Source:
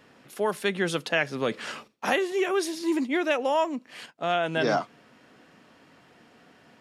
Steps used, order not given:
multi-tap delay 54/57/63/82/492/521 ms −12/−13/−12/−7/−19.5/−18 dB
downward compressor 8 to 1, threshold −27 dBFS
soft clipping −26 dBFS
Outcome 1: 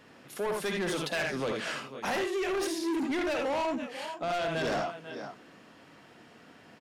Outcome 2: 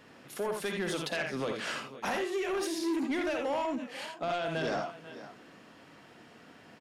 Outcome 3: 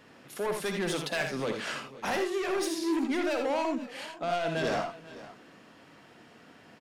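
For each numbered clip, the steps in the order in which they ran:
multi-tap delay, then soft clipping, then downward compressor
downward compressor, then multi-tap delay, then soft clipping
soft clipping, then downward compressor, then multi-tap delay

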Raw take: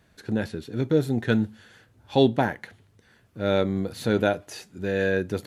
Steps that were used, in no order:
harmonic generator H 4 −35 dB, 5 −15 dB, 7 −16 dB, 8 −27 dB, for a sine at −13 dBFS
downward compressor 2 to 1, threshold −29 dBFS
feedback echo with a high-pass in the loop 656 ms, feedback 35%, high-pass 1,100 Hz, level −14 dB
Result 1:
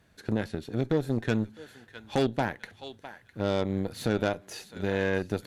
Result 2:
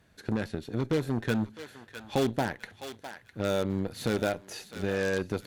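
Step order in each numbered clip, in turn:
feedback echo with a high-pass in the loop, then downward compressor, then harmonic generator
harmonic generator, then feedback echo with a high-pass in the loop, then downward compressor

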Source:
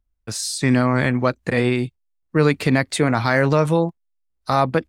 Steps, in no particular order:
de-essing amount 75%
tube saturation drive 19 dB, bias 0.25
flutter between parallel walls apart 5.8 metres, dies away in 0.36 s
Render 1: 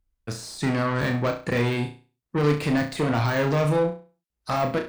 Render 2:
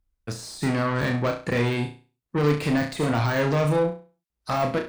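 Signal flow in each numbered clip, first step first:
tube saturation, then de-essing, then flutter between parallel walls
tube saturation, then flutter between parallel walls, then de-essing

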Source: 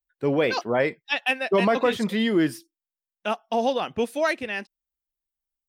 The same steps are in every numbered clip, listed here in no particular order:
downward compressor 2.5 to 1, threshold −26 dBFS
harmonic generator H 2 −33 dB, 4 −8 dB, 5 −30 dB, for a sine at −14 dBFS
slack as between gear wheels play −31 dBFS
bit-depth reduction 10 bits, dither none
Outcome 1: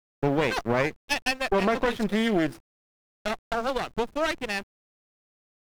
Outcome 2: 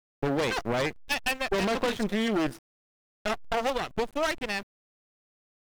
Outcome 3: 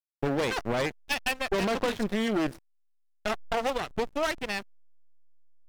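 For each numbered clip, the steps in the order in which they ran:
slack as between gear wheels, then downward compressor, then harmonic generator, then bit-depth reduction
harmonic generator, then slack as between gear wheels, then downward compressor, then bit-depth reduction
harmonic generator, then downward compressor, then bit-depth reduction, then slack as between gear wheels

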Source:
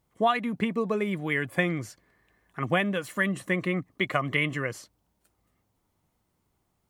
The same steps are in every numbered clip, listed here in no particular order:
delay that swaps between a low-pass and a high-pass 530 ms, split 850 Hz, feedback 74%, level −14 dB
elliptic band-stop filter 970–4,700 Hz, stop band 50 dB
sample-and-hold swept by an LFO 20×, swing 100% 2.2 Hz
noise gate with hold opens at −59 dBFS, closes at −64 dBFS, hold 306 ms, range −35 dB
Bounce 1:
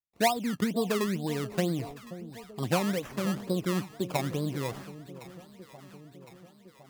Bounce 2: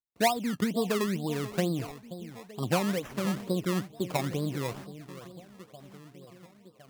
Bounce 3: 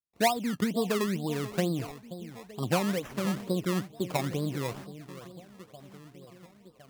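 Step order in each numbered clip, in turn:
noise gate with hold, then elliptic band-stop filter, then sample-and-hold swept by an LFO, then delay that swaps between a low-pass and a high-pass
elliptic band-stop filter, then noise gate with hold, then delay that swaps between a low-pass and a high-pass, then sample-and-hold swept by an LFO
delay that swaps between a low-pass and a high-pass, then noise gate with hold, then elliptic band-stop filter, then sample-and-hold swept by an LFO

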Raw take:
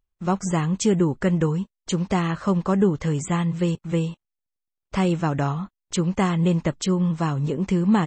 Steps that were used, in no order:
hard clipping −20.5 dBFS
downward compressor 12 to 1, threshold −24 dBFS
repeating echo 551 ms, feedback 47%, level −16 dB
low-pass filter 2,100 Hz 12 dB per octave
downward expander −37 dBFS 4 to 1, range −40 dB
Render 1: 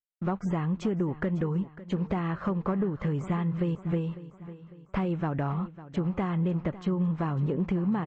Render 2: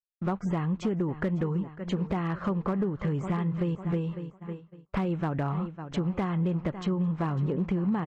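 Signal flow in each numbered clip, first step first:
downward compressor, then hard clipping, then low-pass filter, then downward expander, then repeating echo
repeating echo, then downward expander, then downward compressor, then low-pass filter, then hard clipping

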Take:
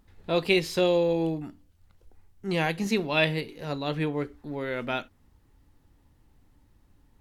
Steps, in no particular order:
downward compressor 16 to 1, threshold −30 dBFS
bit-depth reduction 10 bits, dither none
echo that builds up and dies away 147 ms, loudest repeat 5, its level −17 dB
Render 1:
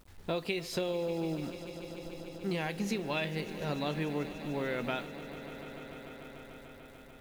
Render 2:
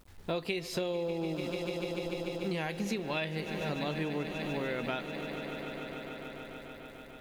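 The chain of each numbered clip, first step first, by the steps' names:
downward compressor, then bit-depth reduction, then echo that builds up and dies away
bit-depth reduction, then echo that builds up and dies away, then downward compressor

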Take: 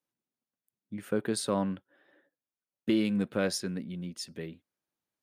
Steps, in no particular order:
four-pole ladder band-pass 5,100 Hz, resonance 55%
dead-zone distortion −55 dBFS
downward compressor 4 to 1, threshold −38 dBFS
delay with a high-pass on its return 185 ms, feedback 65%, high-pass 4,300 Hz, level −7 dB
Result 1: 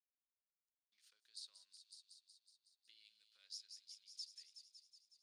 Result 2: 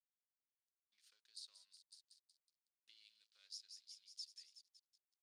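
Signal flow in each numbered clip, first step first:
dead-zone distortion, then delay with a high-pass on its return, then downward compressor, then four-pole ladder band-pass
delay with a high-pass on its return, then downward compressor, then dead-zone distortion, then four-pole ladder band-pass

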